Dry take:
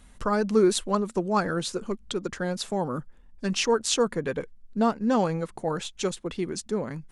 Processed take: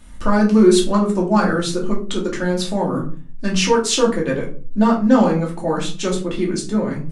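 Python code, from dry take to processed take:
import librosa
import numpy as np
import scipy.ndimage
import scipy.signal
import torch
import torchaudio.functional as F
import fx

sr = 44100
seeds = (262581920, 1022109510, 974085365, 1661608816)

p1 = np.clip(x, -10.0 ** (-18.5 / 20.0), 10.0 ** (-18.5 / 20.0))
p2 = x + (p1 * 10.0 ** (-8.0 / 20.0))
y = fx.room_shoebox(p2, sr, seeds[0], volume_m3=250.0, walls='furnished', distance_m=2.6)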